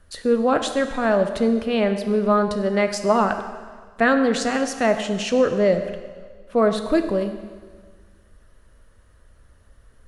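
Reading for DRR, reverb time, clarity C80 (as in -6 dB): 7.0 dB, 1.6 s, 10.0 dB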